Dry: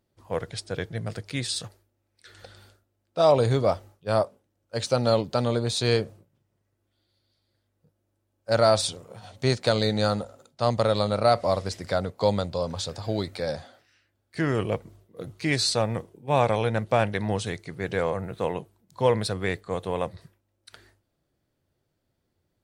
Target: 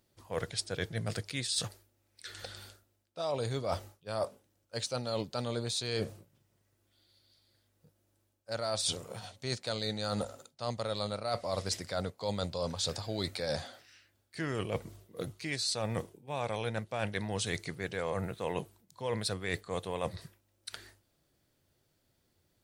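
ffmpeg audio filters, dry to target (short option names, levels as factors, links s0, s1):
-af "highshelf=f=2200:g=8.5,areverse,acompressor=threshold=0.0316:ratio=16,areverse"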